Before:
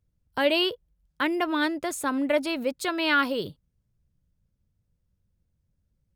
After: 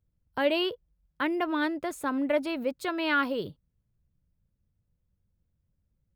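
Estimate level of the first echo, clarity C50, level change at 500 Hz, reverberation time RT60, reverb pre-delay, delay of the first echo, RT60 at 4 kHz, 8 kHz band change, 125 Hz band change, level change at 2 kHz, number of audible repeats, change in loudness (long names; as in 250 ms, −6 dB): no echo audible, no reverb audible, −2.0 dB, no reverb audible, no reverb audible, no echo audible, no reverb audible, −10.0 dB, −2.0 dB, −4.0 dB, no echo audible, −3.0 dB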